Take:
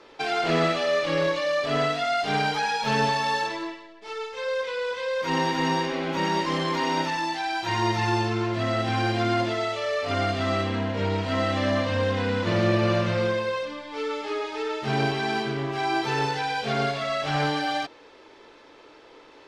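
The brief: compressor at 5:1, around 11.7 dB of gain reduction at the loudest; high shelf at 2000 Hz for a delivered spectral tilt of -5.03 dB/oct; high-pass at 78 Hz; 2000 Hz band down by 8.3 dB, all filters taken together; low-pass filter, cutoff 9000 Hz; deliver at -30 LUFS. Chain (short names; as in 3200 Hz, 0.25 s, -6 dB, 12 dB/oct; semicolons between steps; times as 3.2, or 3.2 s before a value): HPF 78 Hz; LPF 9000 Hz; high shelf 2000 Hz -7 dB; bell 2000 Hz -6.5 dB; compressor 5:1, threshold -33 dBFS; gain +6 dB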